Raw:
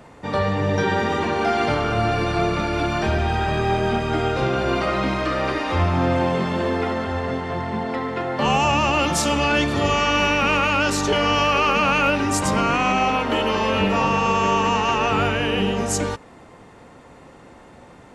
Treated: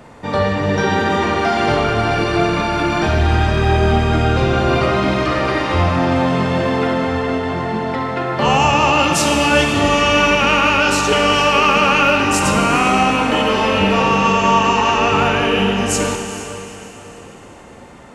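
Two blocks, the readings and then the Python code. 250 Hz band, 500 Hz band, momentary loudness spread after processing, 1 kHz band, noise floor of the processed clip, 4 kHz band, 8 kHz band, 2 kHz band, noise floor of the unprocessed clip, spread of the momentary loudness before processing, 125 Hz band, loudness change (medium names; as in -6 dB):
+5.5 dB, +5.0 dB, 8 LU, +5.0 dB, -39 dBFS, +6.0 dB, +5.5 dB, +6.0 dB, -46 dBFS, 6 LU, +5.5 dB, +5.5 dB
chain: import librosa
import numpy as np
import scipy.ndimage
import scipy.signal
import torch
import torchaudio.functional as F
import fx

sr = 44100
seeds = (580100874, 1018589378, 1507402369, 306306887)

p1 = x + fx.echo_diffused(x, sr, ms=454, feedback_pct=43, wet_db=-13, dry=0)
p2 = fx.rev_schroeder(p1, sr, rt60_s=2.3, comb_ms=26, drr_db=4.0)
y = p2 * librosa.db_to_amplitude(4.0)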